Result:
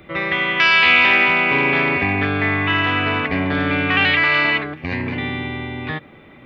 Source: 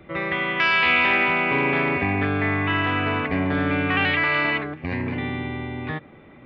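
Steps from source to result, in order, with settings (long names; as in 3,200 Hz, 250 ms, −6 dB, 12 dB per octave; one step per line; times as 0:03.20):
high-shelf EQ 2,900 Hz +11 dB
level +2 dB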